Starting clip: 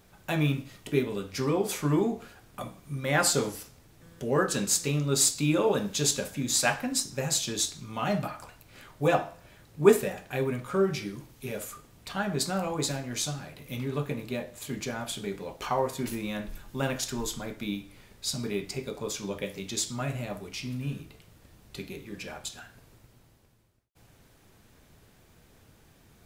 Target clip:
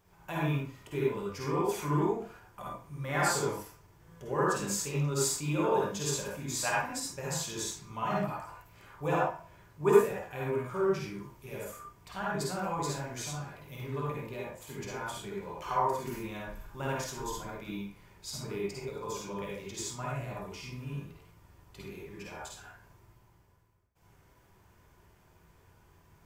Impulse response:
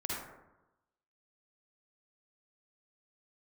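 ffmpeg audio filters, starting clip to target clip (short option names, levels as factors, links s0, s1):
-filter_complex "[0:a]equalizer=f=250:t=o:w=0.33:g=-9,equalizer=f=1000:t=o:w=0.33:g=8,equalizer=f=4000:t=o:w=0.33:g=-7,equalizer=f=10000:t=o:w=0.33:g=-5[s0];[1:a]atrim=start_sample=2205,afade=t=out:st=0.19:d=0.01,atrim=end_sample=8820[s1];[s0][s1]afir=irnorm=-1:irlink=0,volume=0.473"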